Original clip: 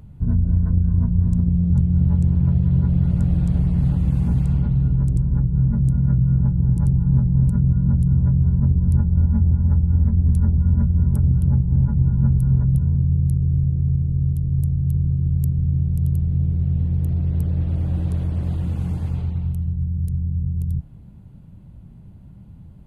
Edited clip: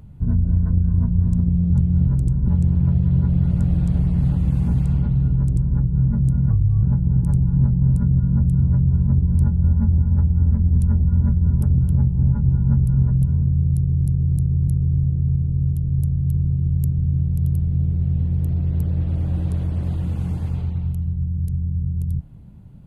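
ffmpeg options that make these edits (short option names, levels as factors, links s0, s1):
-filter_complex "[0:a]asplit=8[s0][s1][s2][s3][s4][s5][s6][s7];[s0]atrim=end=2.082[s8];[s1]atrim=start=4.968:end=5.372[s9];[s2]atrim=start=2.078:end=6.104[s10];[s3]atrim=start=6.1:end=6.36,asetpts=PTS-STARTPTS,asetrate=34839,aresample=44100[s11];[s4]atrim=start=6.356:end=13.592[s12];[s5]atrim=start=13.278:end=13.592[s13];[s6]atrim=start=13.278:end=13.592[s14];[s7]atrim=start=13.278[s15];[s8][s9]acrossfade=d=0.004:c1=hsin:c2=hsin[s16];[s16][s10]acrossfade=d=0.004:c1=hsin:c2=hsin[s17];[s17][s11]acrossfade=d=0.004:c1=hsin:c2=hsin[s18];[s18][s12]acrossfade=d=0.004:c1=hsin:c2=hsin[s19];[s19][s13]acrossfade=d=0.004:c1=hsin:c2=hsin[s20];[s20][s14]acrossfade=d=0.004:c1=hsin:c2=hsin[s21];[s21][s15]acrossfade=d=0.004:c1=hsin:c2=hsin"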